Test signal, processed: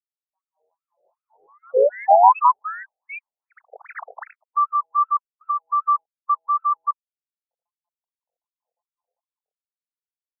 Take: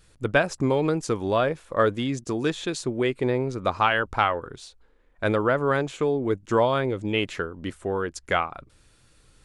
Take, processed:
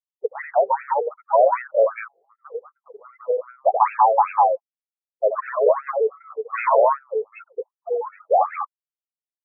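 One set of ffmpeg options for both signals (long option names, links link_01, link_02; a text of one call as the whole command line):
ffmpeg -i in.wav -filter_complex "[0:a]afftfilt=real='re*gte(hypot(re,im),0.178)':imag='im*gte(hypot(re,im),0.178)':win_size=1024:overlap=0.75,firequalizer=gain_entry='entry(240,0);entry(1000,10);entry(1500,-26);entry(5300,15)':delay=0.05:min_phase=1,asplit=2[link_01][link_02];[link_02]highpass=frequency=720:poles=1,volume=18dB,asoftclip=type=tanh:threshold=-3.5dB[link_03];[link_01][link_03]amix=inputs=2:normalize=0,lowpass=frequency=6800:poles=1,volume=-6dB,asplit=2[link_04][link_05];[link_05]aecho=0:1:81.63|189.5:0.447|0.891[link_06];[link_04][link_06]amix=inputs=2:normalize=0,afftfilt=real='re*between(b*sr/1024,550*pow(1900/550,0.5+0.5*sin(2*PI*2.6*pts/sr))/1.41,550*pow(1900/550,0.5+0.5*sin(2*PI*2.6*pts/sr))*1.41)':imag='im*between(b*sr/1024,550*pow(1900/550,0.5+0.5*sin(2*PI*2.6*pts/sr))/1.41,550*pow(1900/550,0.5+0.5*sin(2*PI*2.6*pts/sr))*1.41)':win_size=1024:overlap=0.75,volume=-1.5dB" out.wav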